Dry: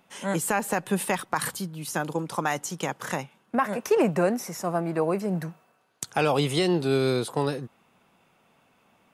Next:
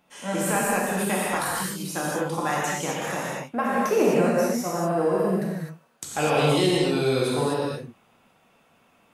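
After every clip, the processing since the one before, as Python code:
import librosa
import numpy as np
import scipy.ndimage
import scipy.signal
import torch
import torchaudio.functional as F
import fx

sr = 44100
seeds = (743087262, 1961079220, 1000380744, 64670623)

y = fx.spec_repair(x, sr, seeds[0], start_s=4.82, length_s=0.43, low_hz=1600.0, high_hz=9800.0, source='before')
y = fx.rev_gated(y, sr, seeds[1], gate_ms=280, shape='flat', drr_db=-6.0)
y = y * librosa.db_to_amplitude(-4.0)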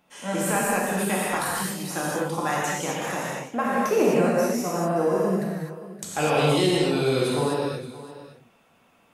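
y = x + 10.0 ** (-16.0 / 20.0) * np.pad(x, (int(573 * sr / 1000.0), 0))[:len(x)]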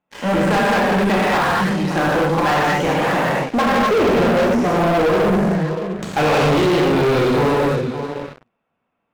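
y = scipy.signal.sosfilt(scipy.signal.butter(2, 2300.0, 'lowpass', fs=sr, output='sos'), x)
y = fx.leveller(y, sr, passes=5)
y = y * librosa.db_to_amplitude(-3.0)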